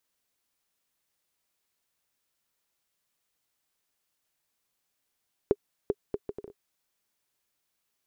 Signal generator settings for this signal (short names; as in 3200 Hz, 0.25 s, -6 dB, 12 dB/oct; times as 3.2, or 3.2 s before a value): bouncing ball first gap 0.39 s, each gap 0.62, 409 Hz, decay 46 ms -10.5 dBFS